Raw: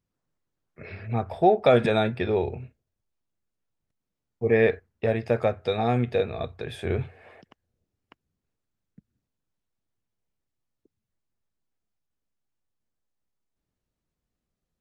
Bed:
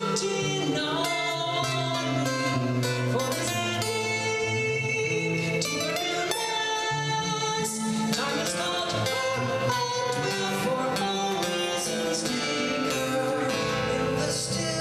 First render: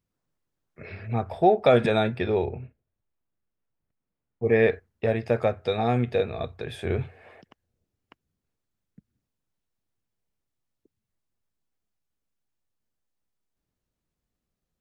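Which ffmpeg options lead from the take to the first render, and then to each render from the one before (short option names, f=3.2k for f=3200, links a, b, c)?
-filter_complex "[0:a]asettb=1/sr,asplit=3[a][b][c];[a]atrim=end=2.454[d];[b]atrim=start=2.45:end=4.45,asetpts=PTS-STARTPTS,afade=t=in:d=0.004:c=qsin,afade=t=out:st=1.996:d=0.004:c=qsin,lowpass=2.4k[e];[c]atrim=start=4.446[f];[d][e]acrossfade=d=0.004:c1=hsin:c2=qsin[g];[g][f]acrossfade=d=0.004:c1=qsin:c2=hsin"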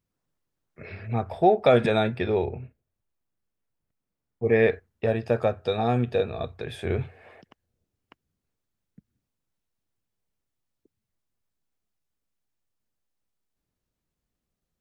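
-filter_complex "[0:a]asettb=1/sr,asplit=3[a][b][c];[a]atrim=end=5.054[d];[b]atrim=start=5.05:end=6.48,asetpts=PTS-STARTPTS,afade=t=in:d=0.004:c=qsin,afade=t=out:st=1.426:d=0.004:c=qsin,bandreject=f=2.1k:w=5.4[e];[c]atrim=start=6.476[f];[d][e]acrossfade=d=0.004:c1=hsin:c2=qsin[g];[g][f]acrossfade=d=0.004:c1=qsin:c2=hsin"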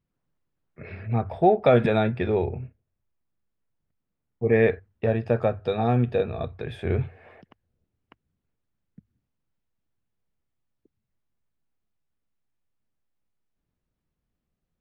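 -af "bass=f=250:g=4,treble=f=4k:g=-11,bandreject=f=50:t=h:w=6,bandreject=f=100:t=h:w=6"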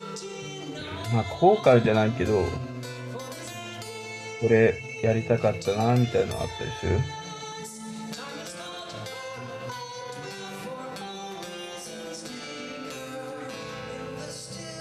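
-filter_complex "[1:a]volume=-10dB[a];[0:a][a]amix=inputs=2:normalize=0"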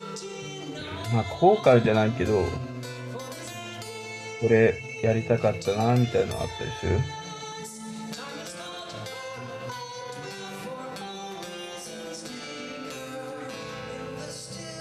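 -af anull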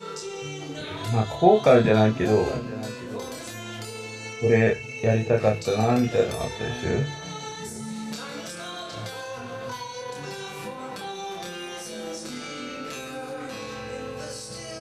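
-filter_complex "[0:a]asplit=2[a][b];[b]adelay=28,volume=-2.5dB[c];[a][c]amix=inputs=2:normalize=0,asplit=2[d][e];[e]adelay=816.3,volume=-17dB,highshelf=f=4k:g=-18.4[f];[d][f]amix=inputs=2:normalize=0"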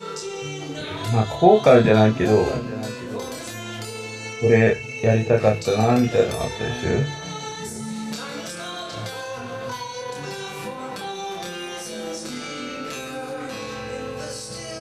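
-af "volume=3.5dB,alimiter=limit=-2dB:level=0:latency=1"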